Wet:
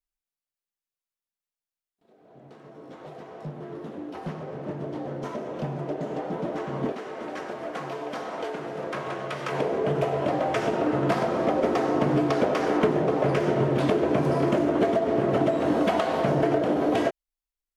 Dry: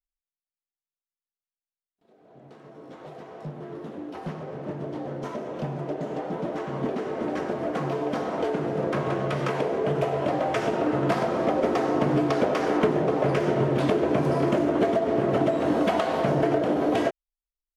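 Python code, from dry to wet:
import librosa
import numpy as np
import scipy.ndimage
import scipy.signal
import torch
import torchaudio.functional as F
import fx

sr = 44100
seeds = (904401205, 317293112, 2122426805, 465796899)

y = fx.low_shelf(x, sr, hz=480.0, db=-12.0, at=(6.92, 9.52))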